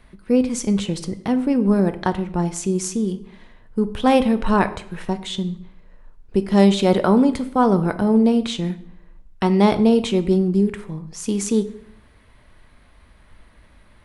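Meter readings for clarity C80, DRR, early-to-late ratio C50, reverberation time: 18.0 dB, 10.0 dB, 14.5 dB, 0.70 s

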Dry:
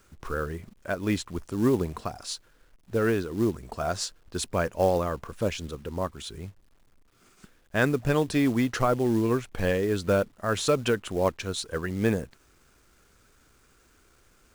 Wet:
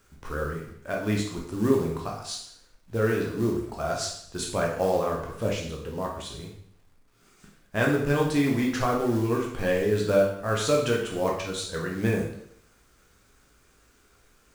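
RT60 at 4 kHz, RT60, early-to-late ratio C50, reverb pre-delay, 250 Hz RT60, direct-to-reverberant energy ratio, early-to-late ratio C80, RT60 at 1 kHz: 0.65 s, 0.70 s, 4.5 dB, 6 ms, 0.70 s, -1.5 dB, 8.0 dB, 0.65 s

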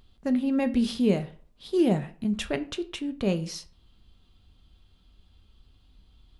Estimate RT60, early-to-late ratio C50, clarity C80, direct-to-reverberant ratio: 0.45 s, 17.0 dB, 21.5 dB, 9.0 dB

